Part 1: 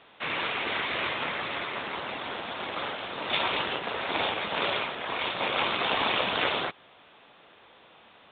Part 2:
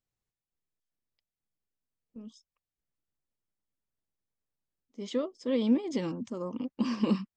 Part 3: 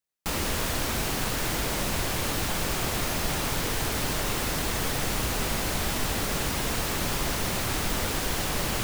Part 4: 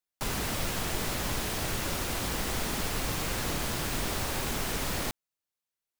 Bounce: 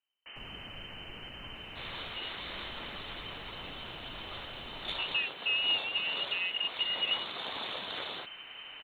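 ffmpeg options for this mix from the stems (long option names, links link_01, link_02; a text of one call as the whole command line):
ffmpeg -i stem1.wav -i stem2.wav -i stem3.wav -i stem4.wav -filter_complex "[0:a]aexciter=amount=7:drive=8:freq=4200,adelay=1550,volume=-14dB[link_01];[1:a]volume=2dB,asplit=2[link_02][link_03];[2:a]volume=-18dB[link_04];[3:a]afwtdn=0.0224,highshelf=frequency=3100:gain=-9,adelay=150,volume=-15.5dB[link_05];[link_03]apad=whole_len=270839[link_06];[link_05][link_06]sidechaincompress=threshold=-45dB:ratio=8:attack=16:release=481[link_07];[link_02][link_04]amix=inputs=2:normalize=0,lowpass=frequency=2600:width_type=q:width=0.5098,lowpass=frequency=2600:width_type=q:width=0.6013,lowpass=frequency=2600:width_type=q:width=0.9,lowpass=frequency=2600:width_type=q:width=2.563,afreqshift=-3100,alimiter=limit=-22.5dB:level=0:latency=1:release=308,volume=0dB[link_08];[link_01][link_07][link_08]amix=inputs=3:normalize=0" out.wav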